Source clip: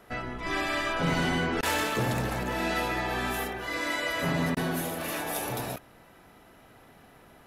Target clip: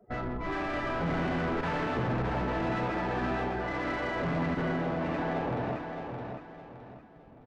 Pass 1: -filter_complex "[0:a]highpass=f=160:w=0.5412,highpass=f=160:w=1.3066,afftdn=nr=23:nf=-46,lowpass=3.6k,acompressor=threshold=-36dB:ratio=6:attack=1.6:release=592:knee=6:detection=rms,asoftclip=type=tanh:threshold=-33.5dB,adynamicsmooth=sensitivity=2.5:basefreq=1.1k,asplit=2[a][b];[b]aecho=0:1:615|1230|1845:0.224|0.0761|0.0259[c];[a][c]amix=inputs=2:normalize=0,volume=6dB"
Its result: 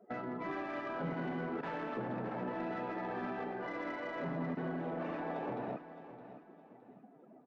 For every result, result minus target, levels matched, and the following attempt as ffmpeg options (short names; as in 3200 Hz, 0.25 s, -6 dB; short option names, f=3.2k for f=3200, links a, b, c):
compressor: peak gain reduction +15 dB; echo-to-direct -7 dB; 125 Hz band -3.5 dB
-filter_complex "[0:a]highpass=f=160:w=0.5412,highpass=f=160:w=1.3066,afftdn=nr=23:nf=-46,lowpass=3.6k,asoftclip=type=tanh:threshold=-33.5dB,adynamicsmooth=sensitivity=2.5:basefreq=1.1k,asplit=2[a][b];[b]aecho=0:1:615|1230|1845:0.224|0.0761|0.0259[c];[a][c]amix=inputs=2:normalize=0,volume=6dB"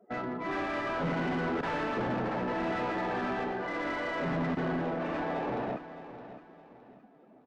echo-to-direct -7 dB; 125 Hz band -4.0 dB
-filter_complex "[0:a]highpass=f=160:w=0.5412,highpass=f=160:w=1.3066,afftdn=nr=23:nf=-46,lowpass=3.6k,asoftclip=type=tanh:threshold=-33.5dB,adynamicsmooth=sensitivity=2.5:basefreq=1.1k,asplit=2[a][b];[b]aecho=0:1:615|1230|1845|2460:0.501|0.17|0.0579|0.0197[c];[a][c]amix=inputs=2:normalize=0,volume=6dB"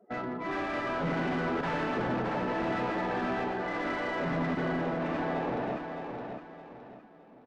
125 Hz band -3.5 dB
-filter_complex "[0:a]afftdn=nr=23:nf=-46,lowpass=3.6k,asoftclip=type=tanh:threshold=-33.5dB,adynamicsmooth=sensitivity=2.5:basefreq=1.1k,asplit=2[a][b];[b]aecho=0:1:615|1230|1845|2460:0.501|0.17|0.0579|0.0197[c];[a][c]amix=inputs=2:normalize=0,volume=6dB"